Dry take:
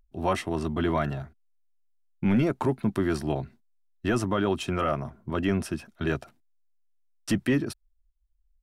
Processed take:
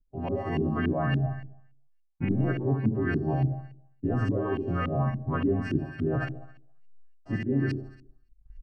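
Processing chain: frequency quantiser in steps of 2 st; recorder AGC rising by 11 dB/s; comb 7.5 ms, depth 61%; reverse; compressor 6:1, threshold -36 dBFS, peak gain reduction 18 dB; reverse; gate -59 dBFS, range -16 dB; low shelf 270 Hz +11 dB; notch 3500 Hz, Q 22; flutter echo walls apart 11.6 m, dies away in 0.65 s; LFO low-pass saw up 3.5 Hz 260–2600 Hz; gain +3.5 dB

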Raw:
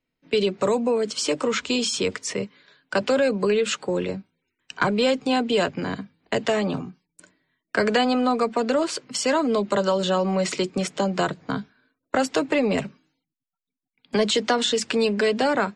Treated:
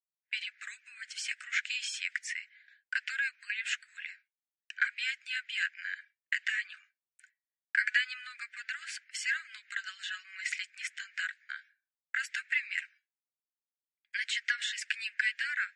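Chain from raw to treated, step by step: steep high-pass 1600 Hz 72 dB/oct; expander -52 dBFS; resonant high shelf 2700 Hz -10.5 dB, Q 1.5

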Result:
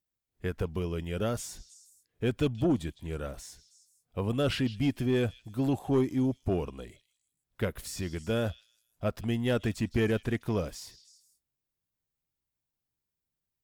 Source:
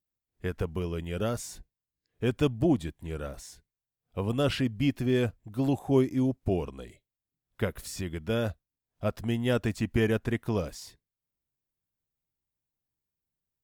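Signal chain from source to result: soft clip -18 dBFS, distortion -18 dB; on a send: delay with a stepping band-pass 0.159 s, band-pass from 4100 Hz, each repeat 0.7 oct, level -11 dB

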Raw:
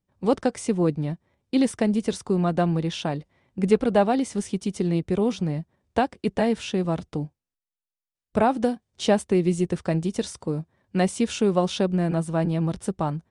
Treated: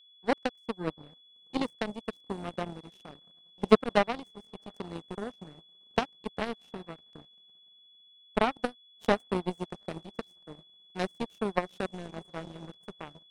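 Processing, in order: diffused feedback echo 0.726 s, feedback 57%, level -13.5 dB; power-law curve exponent 3; whine 3400 Hz -60 dBFS; gain +3.5 dB

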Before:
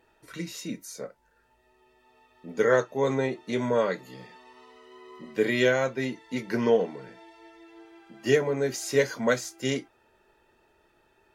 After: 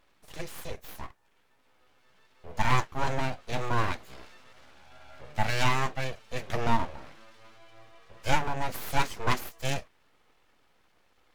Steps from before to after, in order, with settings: full-wave rectifier

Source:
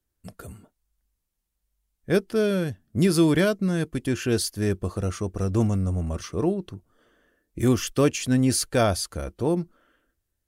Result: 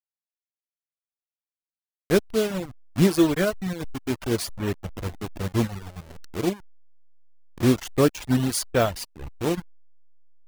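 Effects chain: level-crossing sampler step -23 dBFS; reverb removal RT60 1.3 s; upward expander 1.5:1, over -37 dBFS; gain +3 dB

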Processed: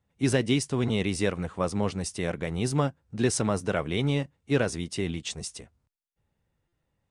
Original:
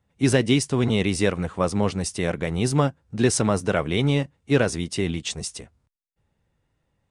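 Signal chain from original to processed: stuck buffer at 6.68, samples 256, times 7; gain -5 dB

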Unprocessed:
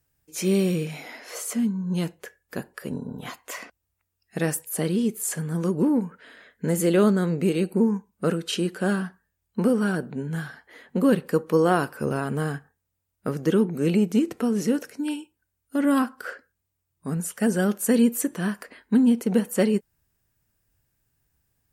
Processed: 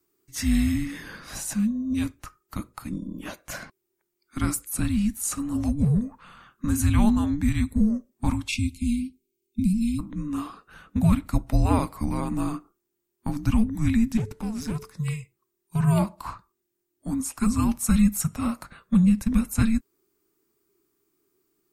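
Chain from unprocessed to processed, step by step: 8.48–9.99 spectral delete 460–2500 Hz; 14.17–14.95 tube stage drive 24 dB, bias 0.8; frequency shift -440 Hz

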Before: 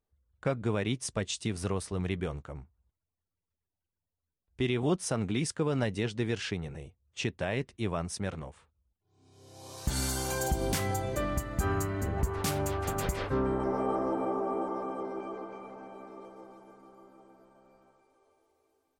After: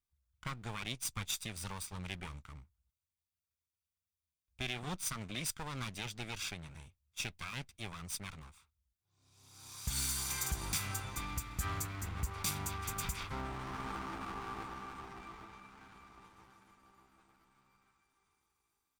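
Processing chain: minimum comb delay 0.83 ms; passive tone stack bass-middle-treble 5-5-5; gain +6.5 dB

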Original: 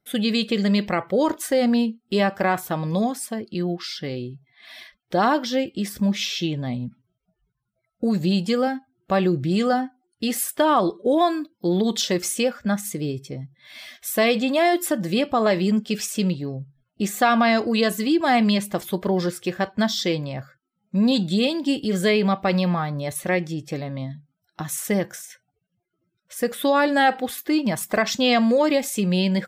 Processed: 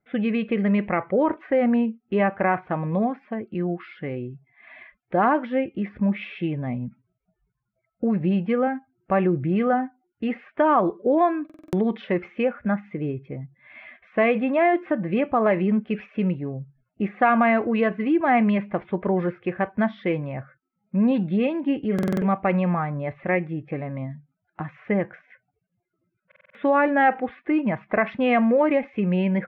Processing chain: elliptic low-pass 2400 Hz, stop band 80 dB; stuck buffer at 11.45/21.94/26.27, samples 2048, times 5

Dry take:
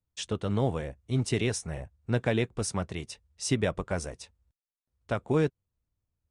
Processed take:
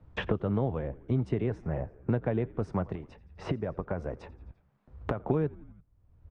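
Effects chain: LPF 1200 Hz 12 dB/oct; 2.95–5.2 compressor 4:1, threshold -45 dBFS, peak gain reduction 19.5 dB; frequency-shifting echo 85 ms, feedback 54%, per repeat -66 Hz, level -23 dB; three-band squash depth 100%

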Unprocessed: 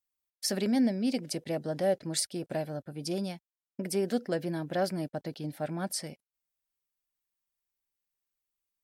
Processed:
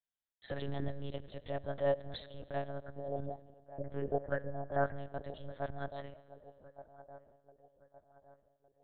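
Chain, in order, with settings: 2.82–4.93 LFO low-pass saw up 6.9 Hz -> 1.5 Hz 360–2000 Hz; fixed phaser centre 1600 Hz, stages 8; band-limited delay 1.165 s, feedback 40%, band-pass 580 Hz, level -13.5 dB; Schroeder reverb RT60 2 s, combs from 27 ms, DRR 17 dB; monotone LPC vocoder at 8 kHz 140 Hz; gain -2.5 dB

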